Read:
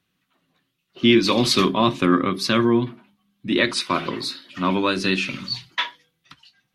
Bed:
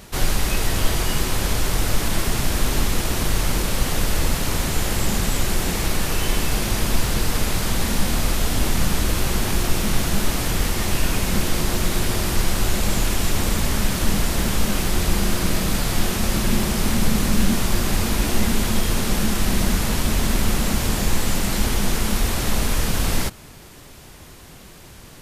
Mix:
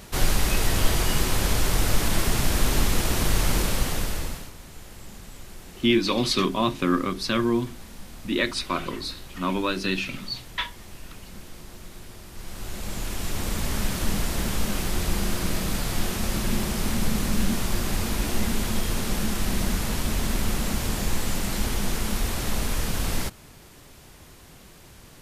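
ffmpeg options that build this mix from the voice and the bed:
ffmpeg -i stem1.wav -i stem2.wav -filter_complex "[0:a]adelay=4800,volume=-5dB[link_01];[1:a]volume=14.5dB,afade=type=out:start_time=3.61:duration=0.91:silence=0.1,afade=type=in:start_time=12.32:duration=1.47:silence=0.158489[link_02];[link_01][link_02]amix=inputs=2:normalize=0" out.wav

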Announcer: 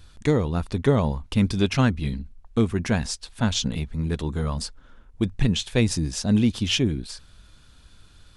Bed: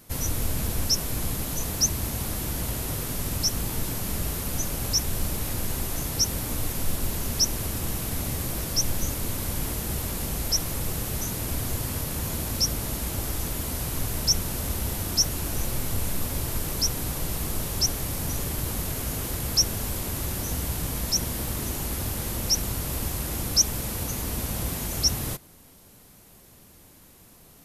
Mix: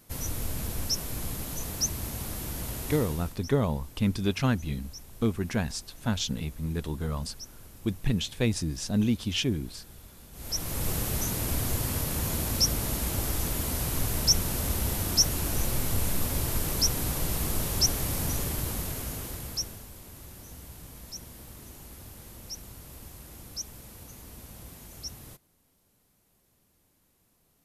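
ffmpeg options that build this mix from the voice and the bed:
ffmpeg -i stem1.wav -i stem2.wav -filter_complex "[0:a]adelay=2650,volume=-5.5dB[link_01];[1:a]volume=15.5dB,afade=type=out:start_time=2.96:duration=0.41:silence=0.16788,afade=type=in:start_time=10.32:duration=0.58:silence=0.0891251,afade=type=out:start_time=18.19:duration=1.68:silence=0.149624[link_02];[link_01][link_02]amix=inputs=2:normalize=0" out.wav

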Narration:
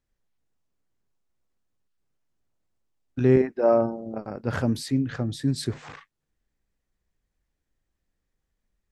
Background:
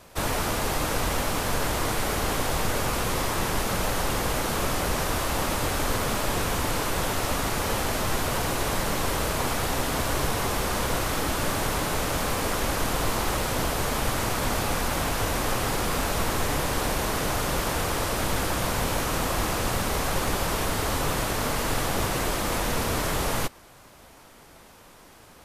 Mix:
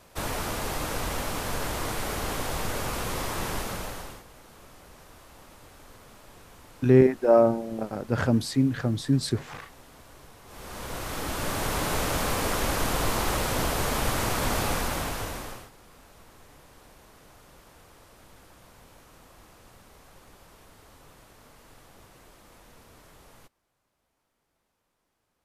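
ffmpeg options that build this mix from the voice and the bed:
ffmpeg -i stem1.wav -i stem2.wav -filter_complex "[0:a]adelay=3650,volume=1.5dB[link_01];[1:a]volume=19.5dB,afade=type=out:start_time=3.53:duration=0.71:silence=0.1,afade=type=in:start_time=10.45:duration=1.48:silence=0.0630957,afade=type=out:start_time=14.67:duration=1.03:silence=0.0473151[link_02];[link_01][link_02]amix=inputs=2:normalize=0" out.wav

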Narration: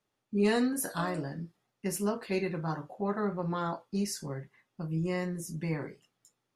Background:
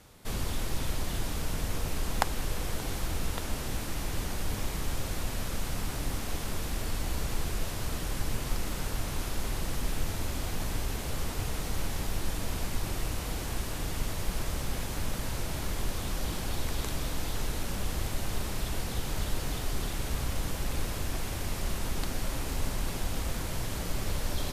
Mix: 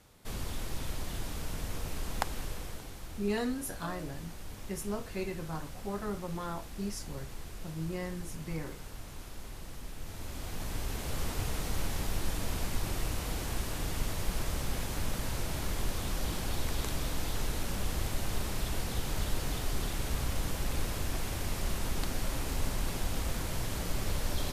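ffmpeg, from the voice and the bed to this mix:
ffmpeg -i stem1.wav -i stem2.wav -filter_complex "[0:a]adelay=2850,volume=-5.5dB[link_01];[1:a]volume=6dB,afade=type=out:start_time=2.37:duration=0.55:silence=0.446684,afade=type=in:start_time=9.98:duration=1.29:silence=0.281838[link_02];[link_01][link_02]amix=inputs=2:normalize=0" out.wav

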